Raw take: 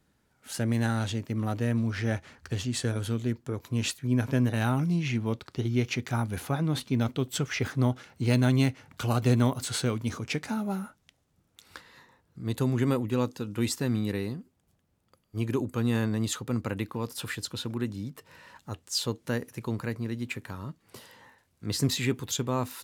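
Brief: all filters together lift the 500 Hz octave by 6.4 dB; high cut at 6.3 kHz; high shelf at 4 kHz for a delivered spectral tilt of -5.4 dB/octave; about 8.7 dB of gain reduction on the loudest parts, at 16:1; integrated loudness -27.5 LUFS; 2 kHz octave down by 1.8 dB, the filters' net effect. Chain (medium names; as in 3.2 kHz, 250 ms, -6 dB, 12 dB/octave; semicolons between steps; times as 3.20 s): low-pass 6.3 kHz; peaking EQ 500 Hz +8 dB; peaking EQ 2 kHz -4 dB; treble shelf 4 kHz +5 dB; compression 16:1, threshold -25 dBFS; trim +5 dB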